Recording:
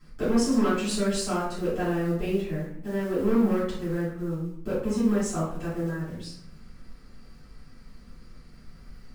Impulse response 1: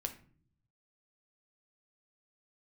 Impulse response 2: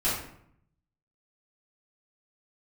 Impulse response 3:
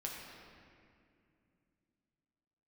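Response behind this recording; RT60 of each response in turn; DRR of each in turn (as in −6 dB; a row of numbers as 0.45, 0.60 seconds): 2; 0.50, 0.70, 2.4 seconds; 5.0, −11.5, −2.5 decibels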